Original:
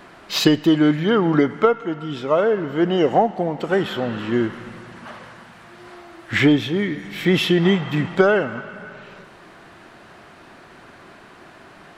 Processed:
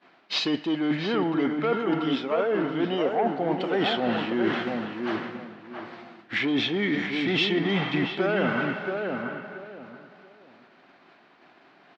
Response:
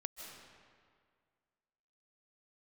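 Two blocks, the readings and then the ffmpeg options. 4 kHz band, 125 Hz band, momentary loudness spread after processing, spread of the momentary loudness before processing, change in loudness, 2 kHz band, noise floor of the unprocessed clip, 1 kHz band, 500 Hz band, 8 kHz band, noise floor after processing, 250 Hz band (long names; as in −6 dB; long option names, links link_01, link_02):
−3.0 dB, −9.5 dB, 16 LU, 19 LU, −7.0 dB, −3.5 dB, −46 dBFS, −5.0 dB, −7.0 dB, below −10 dB, −57 dBFS, −6.5 dB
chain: -filter_complex "[0:a]aeval=exprs='0.891*(cos(1*acos(clip(val(0)/0.891,-1,1)))-cos(1*PI/2))+0.141*(cos(5*acos(clip(val(0)/0.891,-1,1)))-cos(5*PI/2))':channel_layout=same,highpass=190,equalizer=frequency=260:width_type=q:width=4:gain=4,equalizer=frequency=760:width_type=q:width=4:gain=4,equalizer=frequency=2300:width_type=q:width=4:gain=3,lowpass=frequency=4600:width=0.5412,lowpass=frequency=4600:width=1.3066,agate=range=-33dB:threshold=-26dB:ratio=3:detection=peak,areverse,acompressor=threshold=-23dB:ratio=12,areverse,highshelf=frequency=3300:gain=8,asplit=2[link_01][link_02];[link_02]adelay=679,lowpass=frequency=1500:poles=1,volume=-4dB,asplit=2[link_03][link_04];[link_04]adelay=679,lowpass=frequency=1500:poles=1,volume=0.25,asplit=2[link_05][link_06];[link_06]adelay=679,lowpass=frequency=1500:poles=1,volume=0.25[link_07];[link_03][link_05][link_07]amix=inputs=3:normalize=0[link_08];[link_01][link_08]amix=inputs=2:normalize=0"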